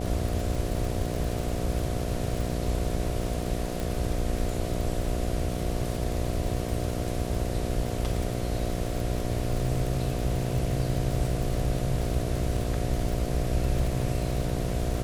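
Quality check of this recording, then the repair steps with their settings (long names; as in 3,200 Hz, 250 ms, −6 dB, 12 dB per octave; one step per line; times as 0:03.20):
mains buzz 60 Hz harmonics 12 −32 dBFS
surface crackle 56 per second −30 dBFS
0:03.80: click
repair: click removal
hum removal 60 Hz, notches 12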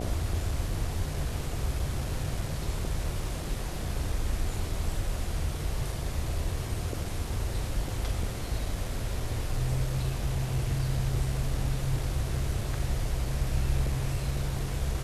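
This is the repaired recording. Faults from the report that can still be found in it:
0:03.80: click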